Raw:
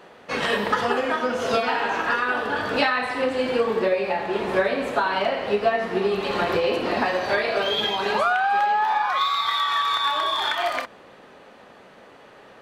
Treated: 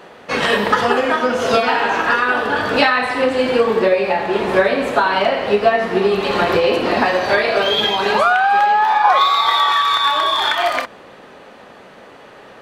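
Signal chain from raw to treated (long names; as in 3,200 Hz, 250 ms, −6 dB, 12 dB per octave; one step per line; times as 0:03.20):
0:09.04–0:09.72: flat-topped bell 560 Hz +8.5 dB
level +7 dB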